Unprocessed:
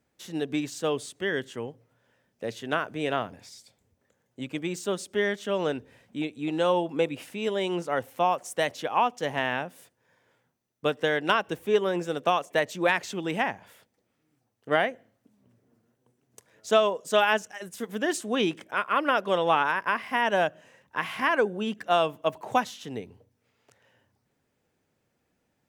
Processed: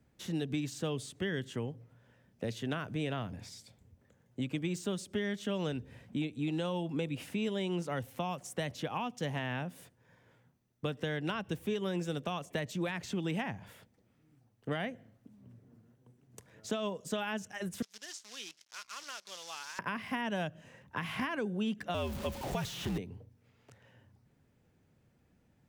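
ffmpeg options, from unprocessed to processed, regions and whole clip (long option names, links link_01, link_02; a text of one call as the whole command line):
ffmpeg -i in.wav -filter_complex "[0:a]asettb=1/sr,asplit=3[link_01][link_02][link_03];[link_01]atrim=end=17.824[link_04];[link_02]atrim=start=17.82:end=19.79,asetpts=PTS-STARTPTS,afade=type=in:duration=0.004:curve=qsin,afade=type=out:start_time=1.966:duration=0.004:curve=qsin,acrusher=bits=6:dc=4:mix=0:aa=0.000001,bandpass=frequency=5600:width_type=q:width=2.8[link_05];[link_03]atrim=start=19.786[link_06];[link_04][link_05]acrossfade=duration=0.004:curve1=hsin:curve2=qsin[link_07];[link_07][link_06]acrossfade=duration=0.004:curve1=qsin:curve2=hsin,asettb=1/sr,asplit=3[link_08][link_09][link_10];[link_08]atrim=end=21.944[link_11];[link_09]atrim=start=21.94:end=22.98,asetpts=PTS-STARTPTS,afade=type=in:duration=0.004:curve=qsin,afade=type=out:start_time=1.036:duration=0.004:curve=qsin,aeval=exprs='val(0)+0.5*0.0211*sgn(val(0))':channel_layout=same,highpass=160,afreqshift=-76[link_12];[link_10]atrim=start=22.976[link_13];[link_11][link_12]acrossfade=duration=0.004:curve1=hsin:curve2=qsin[link_14];[link_14][link_13]acrossfade=duration=0.004:curve1=qsin:curve2=hsin,bass=frequency=250:gain=11,treble=frequency=4000:gain=-3,alimiter=limit=-14.5dB:level=0:latency=1:release=90,acrossover=split=210|2700[link_15][link_16][link_17];[link_15]acompressor=threshold=-39dB:ratio=4[link_18];[link_16]acompressor=threshold=-37dB:ratio=4[link_19];[link_17]acompressor=threshold=-44dB:ratio=4[link_20];[link_18][link_19][link_20]amix=inputs=3:normalize=0" out.wav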